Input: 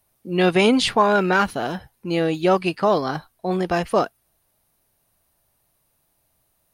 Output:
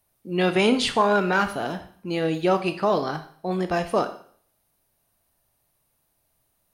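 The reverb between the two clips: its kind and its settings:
four-comb reverb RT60 0.53 s, combs from 25 ms, DRR 9 dB
level −3.5 dB

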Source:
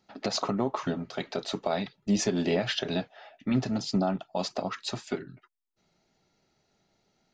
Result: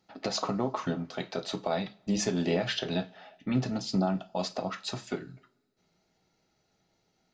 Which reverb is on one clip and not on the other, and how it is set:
coupled-rooms reverb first 0.29 s, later 1.9 s, from −27 dB, DRR 8.5 dB
level −2 dB

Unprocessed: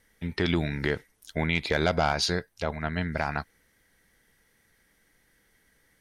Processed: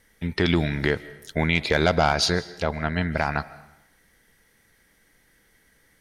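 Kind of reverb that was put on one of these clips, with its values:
comb and all-pass reverb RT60 0.86 s, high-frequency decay 0.9×, pre-delay 105 ms, DRR 18 dB
level +4.5 dB

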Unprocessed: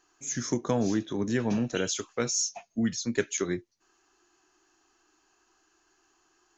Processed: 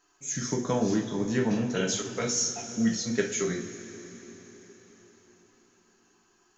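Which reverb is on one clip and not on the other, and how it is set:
coupled-rooms reverb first 0.35 s, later 4.8 s, from −18 dB, DRR −1.5 dB
level −2.5 dB

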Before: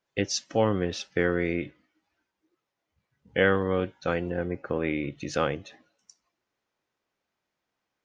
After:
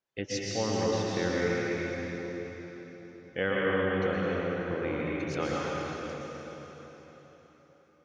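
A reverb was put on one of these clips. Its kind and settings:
dense smooth reverb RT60 4.3 s, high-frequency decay 0.9×, pre-delay 105 ms, DRR −5.5 dB
level −8.5 dB

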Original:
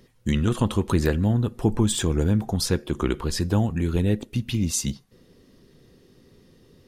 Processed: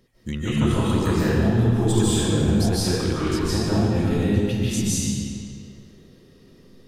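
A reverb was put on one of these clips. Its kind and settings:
comb and all-pass reverb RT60 2.1 s, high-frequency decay 0.85×, pre-delay 110 ms, DRR −9.5 dB
level −6.5 dB

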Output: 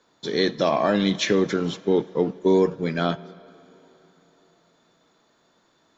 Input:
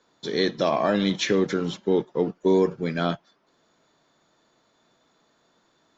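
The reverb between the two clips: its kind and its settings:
dense smooth reverb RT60 3.8 s, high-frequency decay 0.8×, DRR 19.5 dB
level +1.5 dB

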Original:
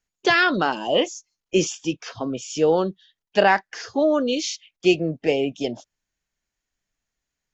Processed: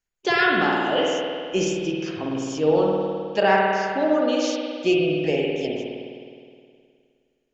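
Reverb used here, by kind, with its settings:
spring reverb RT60 2.2 s, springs 52 ms, chirp 75 ms, DRR −2.5 dB
level −4.5 dB

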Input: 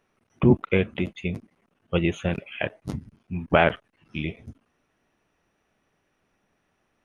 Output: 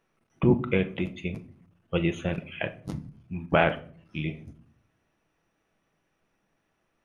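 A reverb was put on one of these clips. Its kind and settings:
rectangular room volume 550 cubic metres, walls furnished, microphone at 0.69 metres
level −3.5 dB

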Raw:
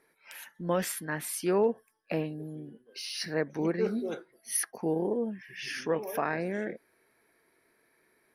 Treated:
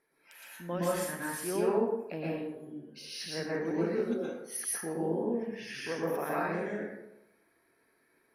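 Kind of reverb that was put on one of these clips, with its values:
dense smooth reverb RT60 0.85 s, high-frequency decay 0.55×, pre-delay 105 ms, DRR −6 dB
level −8.5 dB

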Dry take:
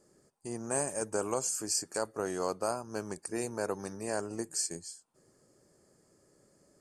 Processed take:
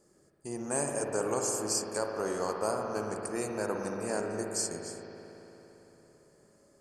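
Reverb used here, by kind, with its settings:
spring reverb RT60 3.7 s, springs 56 ms, chirp 30 ms, DRR 1 dB

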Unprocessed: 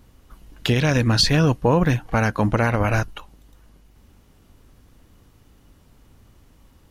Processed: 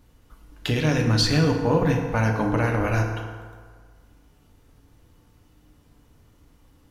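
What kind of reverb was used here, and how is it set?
feedback delay network reverb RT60 1.7 s, low-frequency decay 0.85×, high-frequency decay 0.55×, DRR 1.5 dB
level −5.5 dB

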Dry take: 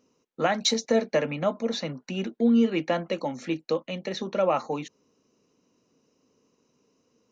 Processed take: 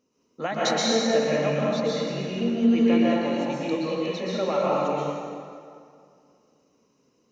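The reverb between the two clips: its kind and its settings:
dense smooth reverb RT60 2.3 s, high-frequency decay 0.7×, pre-delay 110 ms, DRR −7 dB
level −5.5 dB

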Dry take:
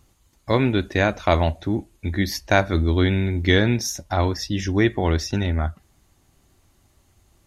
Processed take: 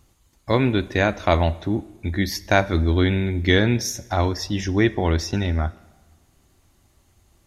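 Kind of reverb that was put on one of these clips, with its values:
dense smooth reverb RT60 1.3 s, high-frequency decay 0.9×, DRR 18.5 dB

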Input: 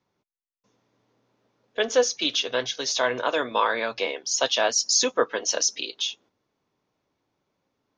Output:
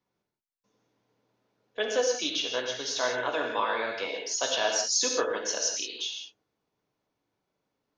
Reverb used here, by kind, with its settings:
reverb whose tail is shaped and stops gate 200 ms flat, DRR 1 dB
level −7 dB

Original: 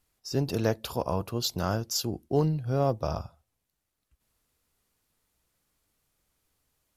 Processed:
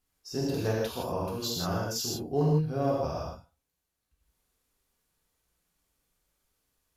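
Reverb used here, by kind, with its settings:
reverb whose tail is shaped and stops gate 190 ms flat, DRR −5 dB
level −7.5 dB

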